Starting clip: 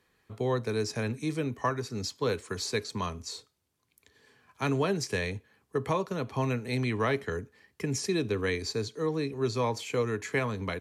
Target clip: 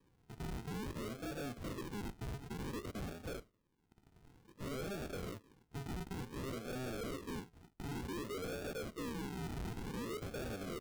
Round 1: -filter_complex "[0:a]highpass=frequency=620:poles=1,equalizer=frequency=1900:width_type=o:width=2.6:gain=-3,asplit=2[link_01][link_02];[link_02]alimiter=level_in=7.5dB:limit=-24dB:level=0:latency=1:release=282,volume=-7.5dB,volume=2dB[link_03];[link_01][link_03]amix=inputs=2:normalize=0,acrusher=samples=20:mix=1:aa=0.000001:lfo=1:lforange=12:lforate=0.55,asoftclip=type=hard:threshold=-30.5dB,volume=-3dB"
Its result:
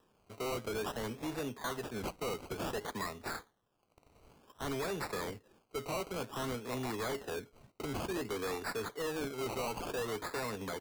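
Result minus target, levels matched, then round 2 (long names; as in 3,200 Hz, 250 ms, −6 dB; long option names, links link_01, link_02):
sample-and-hold swept by an LFO: distortion −25 dB; hard clipping: distortion −4 dB
-filter_complex "[0:a]highpass=frequency=620:poles=1,equalizer=frequency=1900:width_type=o:width=2.6:gain=-3,asplit=2[link_01][link_02];[link_02]alimiter=level_in=7.5dB:limit=-24dB:level=0:latency=1:release=282,volume=-7.5dB,volume=2dB[link_03];[link_01][link_03]amix=inputs=2:normalize=0,acrusher=samples=62:mix=1:aa=0.000001:lfo=1:lforange=37.2:lforate=0.55,asoftclip=type=hard:threshold=-37dB,volume=-3dB"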